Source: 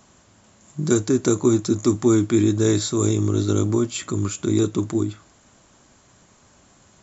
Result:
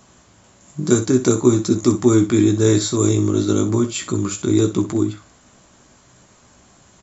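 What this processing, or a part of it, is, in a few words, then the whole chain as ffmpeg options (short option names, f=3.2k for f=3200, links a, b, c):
slapback doubling: -filter_complex "[0:a]asplit=3[a][b][c];[b]adelay=16,volume=-8dB[d];[c]adelay=63,volume=-12dB[e];[a][d][e]amix=inputs=3:normalize=0,volume=2.5dB"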